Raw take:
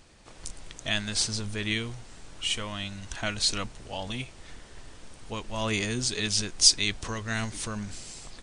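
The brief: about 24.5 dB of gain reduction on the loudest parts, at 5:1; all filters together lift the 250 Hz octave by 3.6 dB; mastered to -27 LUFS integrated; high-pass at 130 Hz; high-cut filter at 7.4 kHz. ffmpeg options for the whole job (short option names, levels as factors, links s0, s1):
-af "highpass=130,lowpass=7400,equalizer=f=250:t=o:g=5,acompressor=threshold=0.00631:ratio=5,volume=8.91"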